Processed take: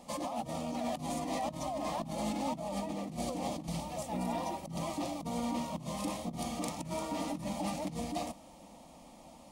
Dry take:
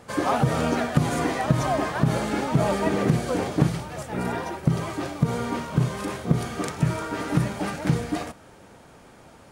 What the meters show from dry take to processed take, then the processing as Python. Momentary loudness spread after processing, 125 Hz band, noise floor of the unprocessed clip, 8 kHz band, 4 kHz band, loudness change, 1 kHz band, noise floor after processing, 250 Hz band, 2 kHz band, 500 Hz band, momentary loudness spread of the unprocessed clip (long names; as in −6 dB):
8 LU, −19.0 dB, −50 dBFS, −6.0 dB, −7.5 dB, −12.0 dB, −9.0 dB, −55 dBFS, −11.0 dB, −16.5 dB, −11.0 dB, 7 LU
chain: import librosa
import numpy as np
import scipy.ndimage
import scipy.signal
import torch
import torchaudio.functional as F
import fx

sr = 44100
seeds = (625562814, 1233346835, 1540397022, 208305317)

y = fx.over_compress(x, sr, threshold_db=-28.0, ratio=-1.0)
y = 10.0 ** (-17.0 / 20.0) * np.tanh(y / 10.0 ** (-17.0 / 20.0))
y = fx.fixed_phaser(y, sr, hz=410.0, stages=6)
y = F.gain(torch.from_numpy(y), -5.0).numpy()